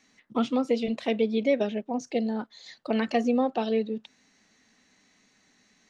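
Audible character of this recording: noise floor -66 dBFS; spectral tilt -4.5 dB/oct

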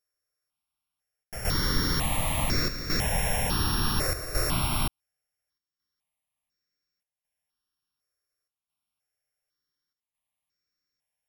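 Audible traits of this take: a buzz of ramps at a fixed pitch in blocks of 8 samples; chopped level 0.69 Hz, depth 65%, duty 85%; notches that jump at a steady rate 2 Hz 870–3100 Hz

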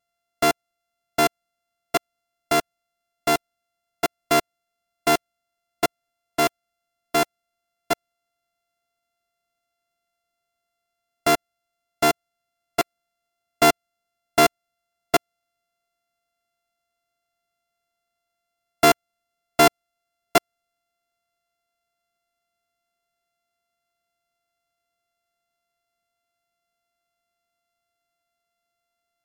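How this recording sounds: a buzz of ramps at a fixed pitch in blocks of 64 samples; MP3

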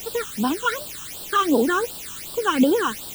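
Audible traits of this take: a quantiser's noise floor 6-bit, dither triangular; phasing stages 8, 2.7 Hz, lowest notch 610–2100 Hz

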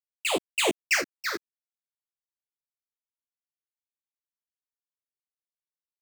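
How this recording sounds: phasing stages 6, 0.58 Hz, lowest notch 770–1600 Hz; a quantiser's noise floor 8-bit, dither none; random-step tremolo 2 Hz, depth 65%; a shimmering, thickened sound

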